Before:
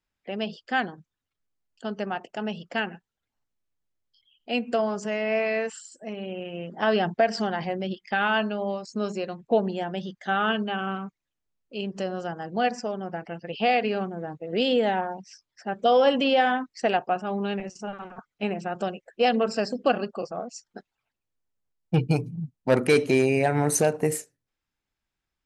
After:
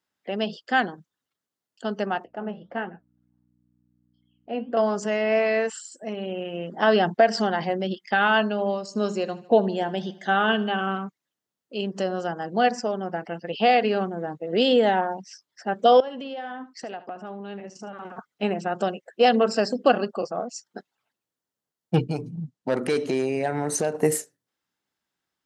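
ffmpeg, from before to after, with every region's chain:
ffmpeg -i in.wav -filter_complex "[0:a]asettb=1/sr,asplit=3[link_01][link_02][link_03];[link_01]atrim=end=2.244[link_04];[link_02]atrim=start=2.24:end=4.77,asetpts=PTS-STARTPTS,afade=type=in:duration=0.004:curve=qsin,afade=type=out:start_time=2.526:duration=0.004:curve=qsin,lowpass=1500,flanger=delay=6.2:depth=8.4:regen=-66:speed=1.5:shape=sinusoidal,aeval=exprs='val(0)+0.000794*(sin(2*PI*60*n/s)+sin(2*PI*2*60*n/s)/2+sin(2*PI*3*60*n/s)/3+sin(2*PI*4*60*n/s)/4+sin(2*PI*5*60*n/s)/5)':channel_layout=same[link_05];[link_03]atrim=start=4.766[link_06];[link_04][link_05]acrossfade=duration=0.004:curve1=hsin:curve2=qsin[link_07];[link_07][link_06]acrossfade=duration=0.004:curve1=qsin:curve2=hsin,asettb=1/sr,asplit=3[link_08][link_09][link_10];[link_08]atrim=end=8.484[link_11];[link_09]atrim=start=8.48:end=10.81,asetpts=PTS-STARTPTS,afade=type=in:duration=0.004:curve=qsin,afade=type=out:start_time=2.326:duration=0.004:curve=qsin,bandreject=frequency=1300:width=12,aecho=1:1:77|154|231|308:0.112|0.0595|0.0315|0.0167,atrim=end_sample=102753[link_12];[link_10]atrim=start=10.806[link_13];[link_11][link_12]acrossfade=duration=0.004:curve1=hsin:curve2=qsin[link_14];[link_14][link_13]acrossfade=duration=0.004:curve1=qsin:curve2=hsin,asettb=1/sr,asplit=3[link_15][link_16][link_17];[link_15]atrim=end=16.004[link_18];[link_16]atrim=start=16:end=18.05,asetpts=PTS-STARTPTS,afade=type=in:duration=0.004:curve=qsin,afade=type=out:start_time=2.046:duration=0.004:curve=qsin,highshelf=frequency=5500:gain=-8.5,acompressor=threshold=-37dB:ratio=5:attack=3.2:release=140:knee=1:detection=peak,aecho=1:1:74:0.158,atrim=end_sample=90405[link_19];[link_17]atrim=start=18.046[link_20];[link_18][link_19]acrossfade=duration=0.004:curve1=hsin:curve2=qsin[link_21];[link_21][link_20]acrossfade=duration=0.004:curve1=qsin:curve2=hsin,asettb=1/sr,asplit=3[link_22][link_23][link_24];[link_22]atrim=end=22.054[link_25];[link_23]atrim=start=22.05:end=23.95,asetpts=PTS-STARTPTS,afade=type=in:duration=0.004:curve=qsin,afade=type=out:start_time=1.896:duration=0.004:curve=qsin,lowpass=8200,acompressor=threshold=-29dB:ratio=2:attack=3.2:release=140:knee=1:detection=peak[link_26];[link_24]atrim=start=23.946[link_27];[link_25][link_26]acrossfade=duration=0.004:curve1=hsin:curve2=qsin[link_28];[link_28][link_27]acrossfade=duration=0.004:curve1=qsin:curve2=hsin,highpass=170,equalizer=frequency=2400:width_type=o:width=0.24:gain=-6.5,volume=4dB" out.wav

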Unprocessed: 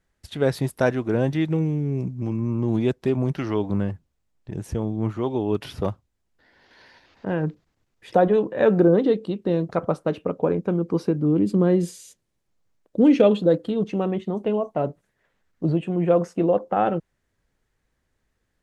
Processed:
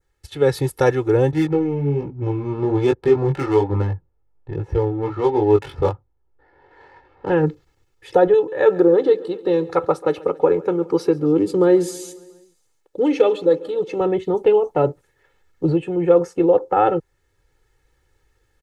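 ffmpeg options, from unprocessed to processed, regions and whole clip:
ffmpeg -i in.wav -filter_complex "[0:a]asettb=1/sr,asplit=3[link_01][link_02][link_03];[link_01]atrim=end=1.314[link_04];[link_02]atrim=start=1.31:end=7.3,asetpts=PTS-STARTPTS,afade=type=in:duration=0.004:curve=qsin,afade=type=out:start_time=5.986:duration=0.004:curve=qsin,equalizer=frequency=950:width_type=o:width=1.7:gain=4.5,adynamicsmooth=sensitivity=5.5:basefreq=1200,flanger=delay=19:depth=3.2:speed=1.2[link_05];[link_03]atrim=start=7.296[link_06];[link_04][link_05]acrossfade=duration=0.004:curve1=hsin:curve2=qsin[link_07];[link_07][link_06]acrossfade=duration=0.004:curve1=qsin:curve2=hsin,asettb=1/sr,asplit=3[link_08][link_09][link_10];[link_08]atrim=end=8.344[link_11];[link_09]atrim=start=8.34:end=14.01,asetpts=PTS-STARTPTS,afade=type=in:duration=0.004:curve=qsin,afade=type=out:start_time=5.666:duration=0.004:curve=qsin,lowshelf=frequency=230:gain=-10,aecho=1:1:137|274|411|548|685:0.0944|0.0557|0.0329|0.0194|0.0114,atrim=end_sample=250047[link_12];[link_10]atrim=start=14.006[link_13];[link_11][link_12]acrossfade=duration=0.004:curve1=hsin:curve2=qsin[link_14];[link_14][link_13]acrossfade=duration=0.004:curve1=qsin:curve2=hsin,adynamicequalizer=threshold=0.00316:dfrequency=2900:dqfactor=1.9:tfrequency=2900:tqfactor=1.9:attack=5:release=100:ratio=0.375:range=2.5:mode=cutabove:tftype=bell,aecho=1:1:2.3:0.91,dynaudnorm=framelen=310:gausssize=3:maxgain=7dB,volume=-1dB" out.wav

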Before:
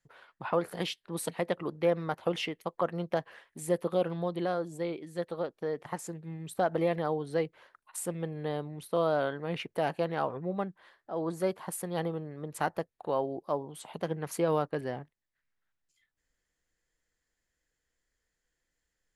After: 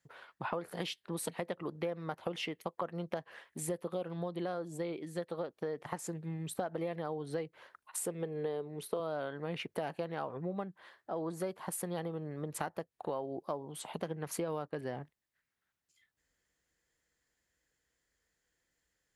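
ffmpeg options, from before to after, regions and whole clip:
ffmpeg -i in.wav -filter_complex "[0:a]asettb=1/sr,asplit=3[link_01][link_02][link_03];[link_01]atrim=end=8.004[link_04];[link_02]atrim=start=8:end=9,asetpts=PTS-STARTPTS,afade=type=in:duration=0.004:curve=qsin,afade=type=out:start_time=0.996:duration=0.004:curve=qsin,highpass=160,equalizer=frequency=430:width_type=o:width=0.29:gain=10.5[link_05];[link_03]atrim=start=8.996[link_06];[link_04][link_05]acrossfade=duration=0.004:curve1=hsin:curve2=qsin[link_07];[link_07][link_06]acrossfade=duration=0.004:curve1=qsin:curve2=hsin,highpass=53,acompressor=threshold=-36dB:ratio=6,volume=2dB" out.wav

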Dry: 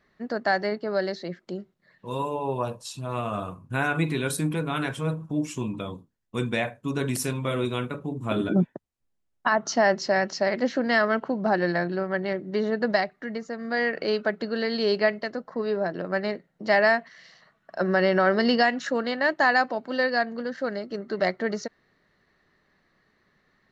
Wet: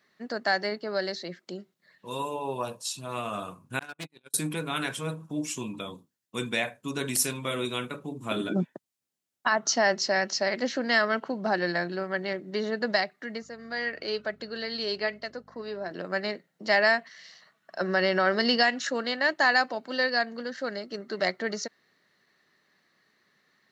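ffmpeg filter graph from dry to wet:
ffmpeg -i in.wav -filter_complex "[0:a]asettb=1/sr,asplit=3[link_01][link_02][link_03];[link_01]atrim=end=3.794[link_04];[link_02]atrim=start=3.79:end=4.34,asetpts=PTS-STARTPTS,afade=type=in:duration=0.004:curve=qsin,afade=type=out:start_time=0.546:duration=0.004:curve=qsin,agate=range=-49dB:threshold=-23dB:ratio=16:release=100:detection=peak,volume=32dB,asoftclip=hard,volume=-32dB[link_05];[link_03]atrim=start=4.336[link_06];[link_04][link_05]acrossfade=duration=0.004:curve1=hsin:curve2=qsin[link_07];[link_07][link_06]acrossfade=duration=0.004:curve1=qsin:curve2=hsin,asettb=1/sr,asplit=3[link_08][link_09][link_10];[link_08]atrim=end=13.424[link_11];[link_09]atrim=start=13.42:end=15.91,asetpts=PTS-STARTPTS,afade=type=in:duration=0.004:curve=qsin,afade=type=out:start_time=2.486:duration=0.004:curve=qsin,flanger=delay=1.4:depth=2.3:regen=74:speed=1.1:shape=triangular,aeval=exprs='val(0)+0.00447*(sin(2*PI*50*n/s)+sin(2*PI*2*50*n/s)/2+sin(2*PI*3*50*n/s)/3+sin(2*PI*4*50*n/s)/4+sin(2*PI*5*50*n/s)/5)':channel_layout=same[link_12];[link_10]atrim=start=15.906[link_13];[link_11][link_12]acrossfade=duration=0.004:curve1=hsin:curve2=qsin[link_14];[link_14][link_13]acrossfade=duration=0.004:curve1=qsin:curve2=hsin,highpass=150,highshelf=frequency=2400:gain=11.5,volume=-4.5dB" out.wav

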